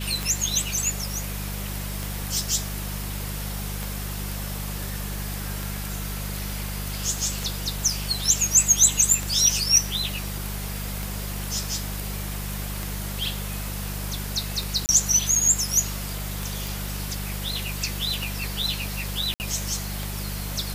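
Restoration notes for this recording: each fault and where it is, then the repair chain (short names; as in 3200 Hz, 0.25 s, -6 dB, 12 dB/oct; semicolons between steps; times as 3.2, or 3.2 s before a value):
hum 50 Hz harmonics 4 -32 dBFS
tick 33 1/3 rpm
14.86–14.89 gap 29 ms
16.67 pop
19.34–19.4 gap 59 ms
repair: de-click; de-hum 50 Hz, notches 4; interpolate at 14.86, 29 ms; interpolate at 19.34, 59 ms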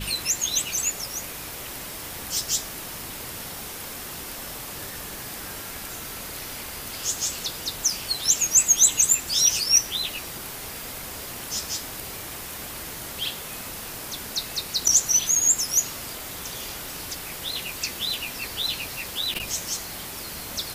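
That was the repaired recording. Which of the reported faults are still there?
none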